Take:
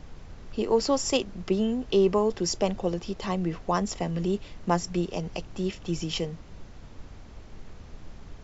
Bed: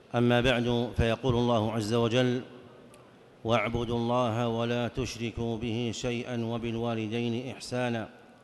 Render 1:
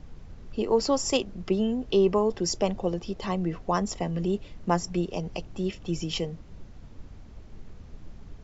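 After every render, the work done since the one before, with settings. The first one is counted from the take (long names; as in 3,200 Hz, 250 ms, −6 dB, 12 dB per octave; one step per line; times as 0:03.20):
broadband denoise 6 dB, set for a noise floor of −46 dBFS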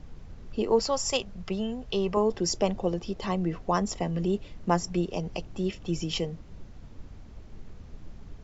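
0:00.79–0:02.17: parametric band 310 Hz −13.5 dB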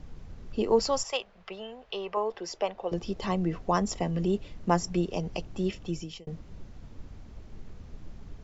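0:01.03–0:02.92: three-way crossover with the lows and the highs turned down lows −20 dB, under 460 Hz, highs −16 dB, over 3,900 Hz
0:05.76–0:06.27: fade out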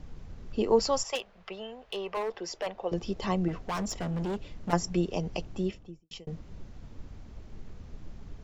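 0:01.15–0:02.67: gain into a clipping stage and back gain 28 dB
0:03.48–0:04.73: gain into a clipping stage and back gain 29 dB
0:05.49–0:06.11: fade out and dull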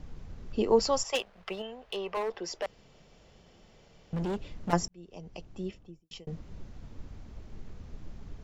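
0:01.14–0:01.62: leveller curve on the samples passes 1
0:02.66–0:04.13: fill with room tone
0:04.88–0:06.41: fade in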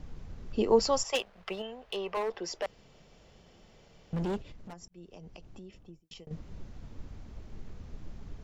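0:04.41–0:06.31: downward compressor 16 to 1, threshold −43 dBFS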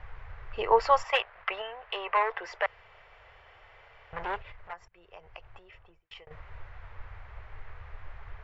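drawn EQ curve 110 Hz 0 dB, 190 Hz −25 dB, 270 Hz −21 dB, 440 Hz −2 dB, 990 Hz +11 dB, 2,000 Hz +14 dB, 6,300 Hz −16 dB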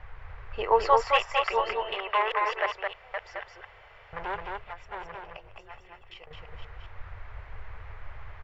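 delay that plays each chunk backwards 580 ms, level −6 dB
on a send: single-tap delay 216 ms −3.5 dB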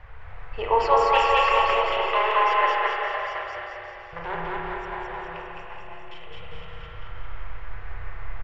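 bouncing-ball delay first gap 210 ms, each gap 0.9×, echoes 5
spring reverb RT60 2.1 s, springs 30/41 ms, chirp 25 ms, DRR −1 dB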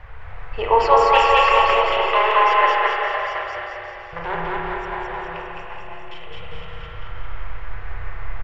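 level +5 dB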